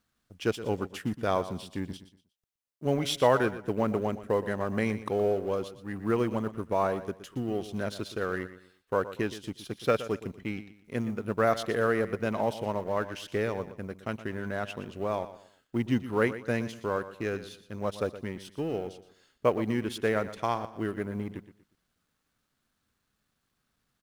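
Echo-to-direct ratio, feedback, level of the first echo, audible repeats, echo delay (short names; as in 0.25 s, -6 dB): -13.5 dB, 31%, -14.0 dB, 3, 0.119 s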